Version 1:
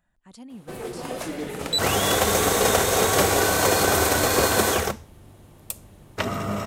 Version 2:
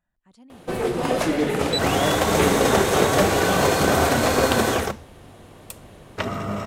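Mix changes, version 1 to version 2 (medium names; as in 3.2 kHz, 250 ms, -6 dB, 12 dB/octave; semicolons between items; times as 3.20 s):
speech -7.0 dB; first sound +10.0 dB; master: add treble shelf 6.5 kHz -9 dB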